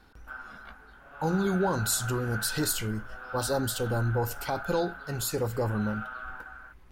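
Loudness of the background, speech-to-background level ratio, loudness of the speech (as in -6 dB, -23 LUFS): -40.0 LUFS, 10.0 dB, -30.0 LUFS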